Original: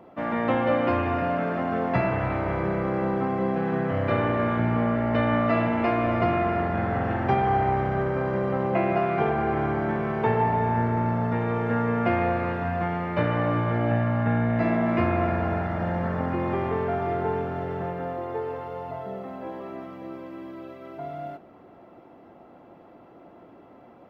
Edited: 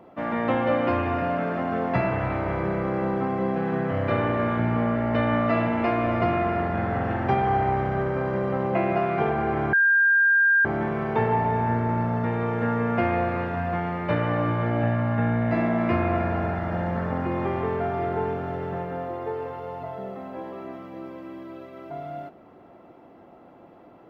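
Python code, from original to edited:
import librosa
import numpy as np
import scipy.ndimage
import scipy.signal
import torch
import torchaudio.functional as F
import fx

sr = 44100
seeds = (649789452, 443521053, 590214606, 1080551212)

y = fx.edit(x, sr, fx.insert_tone(at_s=9.73, length_s=0.92, hz=1600.0, db=-15.5), tone=tone)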